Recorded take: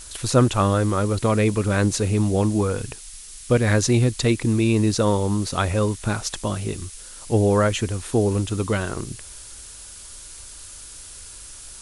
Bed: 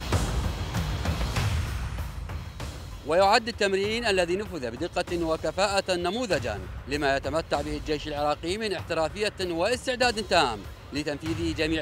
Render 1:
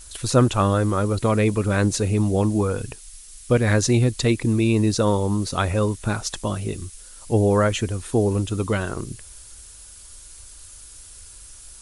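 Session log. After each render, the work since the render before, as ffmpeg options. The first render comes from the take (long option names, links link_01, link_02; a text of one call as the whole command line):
ffmpeg -i in.wav -af "afftdn=noise_reduction=6:noise_floor=-41" out.wav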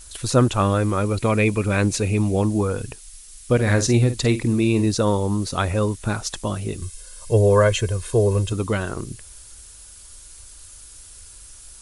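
ffmpeg -i in.wav -filter_complex "[0:a]asettb=1/sr,asplit=3[link_01][link_02][link_03];[link_01]atrim=end=0.614[link_04];[link_02]atrim=start=0.61:end=2.41,asetpts=PTS-STARTPTS,afade=type=in:duration=0.004:curve=qsin,afade=type=out:start_time=1.796:duration=0.004:curve=qsin,equalizer=frequency=2400:width_type=o:width=0.23:gain=10[link_05];[link_03]atrim=start=2.406[link_06];[link_04][link_05]acrossfade=duration=0.004:curve1=hsin:curve2=qsin[link_07];[link_07][link_06]acrossfade=duration=0.004:curve1=qsin:curve2=hsin,asettb=1/sr,asplit=3[link_08][link_09][link_10];[link_08]atrim=end=3.544[link_11];[link_09]atrim=start=3.54:end=4.86,asetpts=PTS-STARTPTS,afade=type=in:duration=0.004:curve=qsin,afade=type=out:start_time=1.316:duration=0.004:curve=qsin,asplit=2[link_12][link_13];[link_13]adelay=50,volume=-11dB[link_14];[link_12][link_14]amix=inputs=2:normalize=0,atrim=end_sample=58212[link_15];[link_10]atrim=start=4.856[link_16];[link_11][link_15]acrossfade=duration=0.004:curve1=hsin:curve2=qsin[link_17];[link_17][link_16]acrossfade=duration=0.004:curve1=qsin:curve2=hsin,asettb=1/sr,asplit=3[link_18][link_19][link_20];[link_18]atrim=end=6.824[link_21];[link_19]atrim=start=6.82:end=8.53,asetpts=PTS-STARTPTS,afade=type=in:duration=0.004:curve=qsin,afade=type=out:start_time=1.706:duration=0.004:curve=qsin,aecho=1:1:1.9:0.79,atrim=end_sample=75411[link_22];[link_20]atrim=start=8.526[link_23];[link_21][link_22]acrossfade=duration=0.004:curve1=hsin:curve2=qsin[link_24];[link_24][link_23]acrossfade=duration=0.004:curve1=qsin:curve2=hsin" out.wav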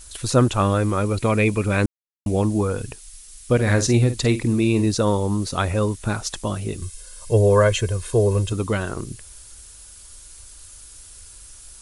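ffmpeg -i in.wav -filter_complex "[0:a]asplit=3[link_01][link_02][link_03];[link_01]atrim=end=1.86,asetpts=PTS-STARTPTS,afade=type=out:start_time=1.856:duration=0.004:curve=hsin[link_04];[link_02]atrim=start=1.86:end=2.26,asetpts=PTS-STARTPTS,volume=0[link_05];[link_03]atrim=start=2.26,asetpts=PTS-STARTPTS,afade=type=in:duration=0.004:curve=hsin[link_06];[link_04][link_05][link_06]concat=n=3:v=0:a=1" out.wav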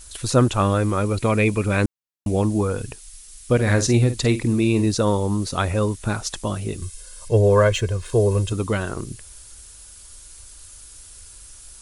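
ffmpeg -i in.wav -filter_complex "[0:a]asettb=1/sr,asplit=3[link_01][link_02][link_03];[link_01]atrim=end=7.284[link_04];[link_02]atrim=start=7.28:end=8.12,asetpts=PTS-STARTPTS,afade=type=in:duration=0.004:curve=qsin,afade=type=out:start_time=0.836:duration=0.004:curve=qsin,adynamicsmooth=sensitivity=3.5:basefreq=7500[link_05];[link_03]atrim=start=8.116[link_06];[link_04][link_05]acrossfade=duration=0.004:curve1=hsin:curve2=qsin[link_07];[link_07][link_06]acrossfade=duration=0.004:curve1=qsin:curve2=hsin" out.wav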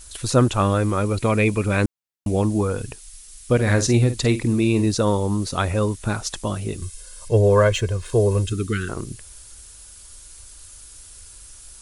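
ffmpeg -i in.wav -filter_complex "[0:a]asettb=1/sr,asplit=3[link_01][link_02][link_03];[link_01]atrim=end=8.454[link_04];[link_02]atrim=start=8.45:end=8.89,asetpts=PTS-STARTPTS,afade=type=in:duration=0.004:curve=qsin,afade=type=out:start_time=0.436:duration=0.004:curve=qsin,asuperstop=centerf=740:order=12:qfactor=0.91[link_05];[link_03]atrim=start=8.886[link_06];[link_04][link_05]acrossfade=duration=0.004:curve1=hsin:curve2=qsin[link_07];[link_07][link_06]acrossfade=duration=0.004:curve1=qsin:curve2=hsin" out.wav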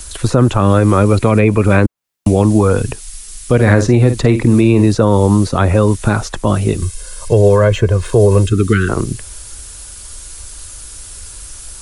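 ffmpeg -i in.wav -filter_complex "[0:a]acrossover=split=150|460|1900[link_01][link_02][link_03][link_04];[link_01]acompressor=threshold=-25dB:ratio=4[link_05];[link_02]acompressor=threshold=-23dB:ratio=4[link_06];[link_03]acompressor=threshold=-25dB:ratio=4[link_07];[link_04]acompressor=threshold=-43dB:ratio=4[link_08];[link_05][link_06][link_07][link_08]amix=inputs=4:normalize=0,alimiter=level_in=13dB:limit=-1dB:release=50:level=0:latency=1" out.wav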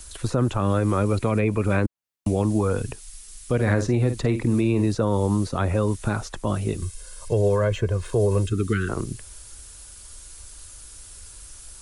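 ffmpeg -i in.wav -af "volume=-11dB" out.wav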